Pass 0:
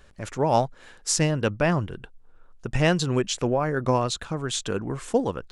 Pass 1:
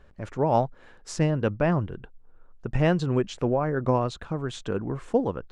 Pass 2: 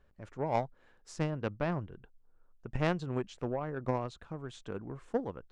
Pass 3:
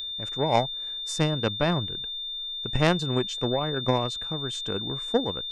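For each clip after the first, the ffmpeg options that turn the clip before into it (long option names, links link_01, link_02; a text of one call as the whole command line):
ffmpeg -i in.wav -af "lowpass=frequency=1200:poles=1" out.wav
ffmpeg -i in.wav -filter_complex "[0:a]asplit=2[link_01][link_02];[link_02]asoftclip=type=tanh:threshold=-21dB,volume=-7dB[link_03];[link_01][link_03]amix=inputs=2:normalize=0,aeval=exprs='0.422*(cos(1*acos(clip(val(0)/0.422,-1,1)))-cos(1*PI/2))+0.0944*(cos(3*acos(clip(val(0)/0.422,-1,1)))-cos(3*PI/2))':channel_layout=same,volume=-6dB" out.wav
ffmpeg -i in.wav -af "aeval=exprs='val(0)+0.00708*sin(2*PI*3600*n/s)':channel_layout=same,aemphasis=mode=production:type=50kf,volume=8dB" out.wav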